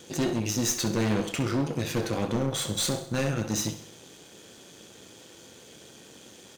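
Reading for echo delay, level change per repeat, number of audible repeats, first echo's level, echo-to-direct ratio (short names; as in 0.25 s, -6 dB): 65 ms, -5.5 dB, 4, -13.0 dB, -11.5 dB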